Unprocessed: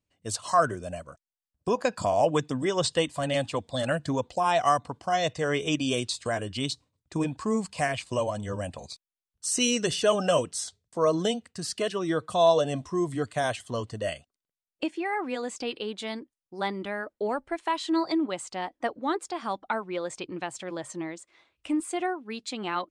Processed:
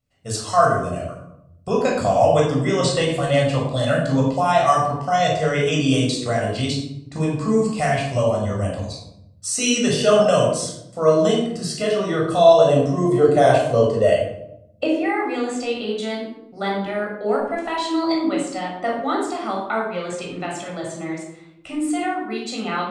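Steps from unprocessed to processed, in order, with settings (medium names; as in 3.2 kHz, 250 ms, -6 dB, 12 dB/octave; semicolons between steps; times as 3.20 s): 12.65–15.03 s: peaking EQ 490 Hz +10 dB 1.2 oct; reverberation RT60 0.75 s, pre-delay 15 ms, DRR -2.5 dB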